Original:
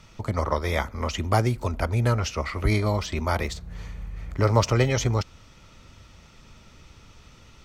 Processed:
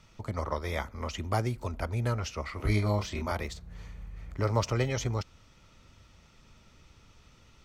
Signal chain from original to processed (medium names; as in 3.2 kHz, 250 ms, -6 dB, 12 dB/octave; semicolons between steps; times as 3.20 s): 2.57–3.32 s: doubling 29 ms -3 dB; trim -7.5 dB